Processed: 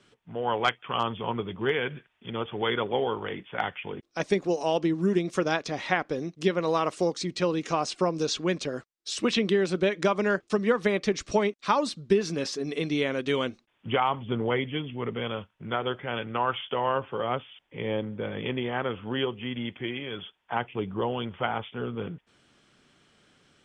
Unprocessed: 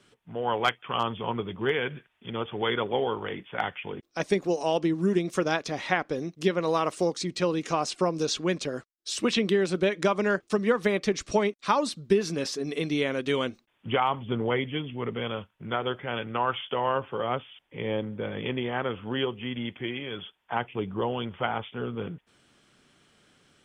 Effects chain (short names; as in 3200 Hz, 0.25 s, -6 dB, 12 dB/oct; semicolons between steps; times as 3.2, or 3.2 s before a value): LPF 8100 Hz 12 dB/oct